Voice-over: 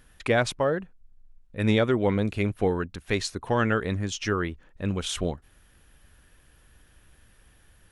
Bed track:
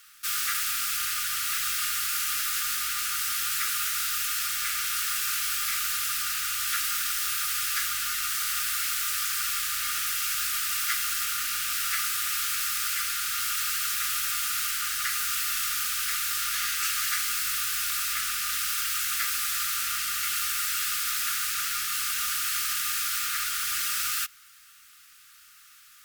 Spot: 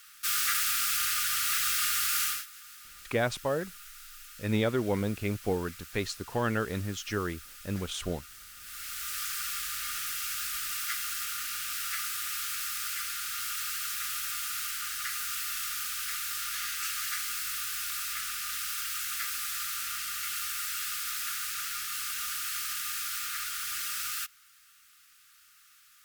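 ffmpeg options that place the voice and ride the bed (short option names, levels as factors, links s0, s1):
-filter_complex "[0:a]adelay=2850,volume=0.531[s0];[1:a]volume=5.31,afade=t=out:st=2.24:d=0.22:silence=0.0944061,afade=t=in:st=8.59:d=0.63:silence=0.188365[s1];[s0][s1]amix=inputs=2:normalize=0"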